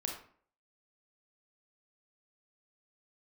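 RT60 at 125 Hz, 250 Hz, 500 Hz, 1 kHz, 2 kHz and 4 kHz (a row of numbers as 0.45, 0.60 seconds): 0.50, 0.55, 0.55, 0.50, 0.45, 0.35 seconds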